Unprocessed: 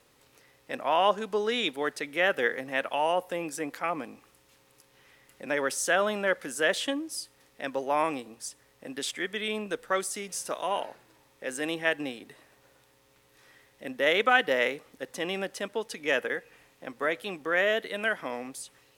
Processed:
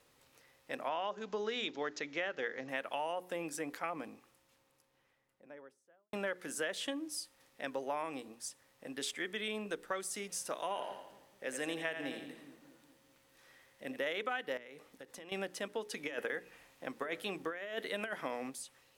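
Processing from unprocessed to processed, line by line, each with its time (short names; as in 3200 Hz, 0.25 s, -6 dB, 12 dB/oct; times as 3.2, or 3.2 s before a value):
0.89–2.69 careless resampling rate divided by 3×, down none, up filtered
3.79–6.13 studio fade out
10.7–14 split-band echo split 340 Hz, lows 0.208 s, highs 84 ms, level -9 dB
14.57–15.32 compressor 20:1, threshold -40 dBFS
15.93–18.5 negative-ratio compressor -30 dBFS, ratio -0.5
whole clip: notches 60/120/180/240/300/360/420 Hz; compressor 10:1, threshold -28 dBFS; gain -5 dB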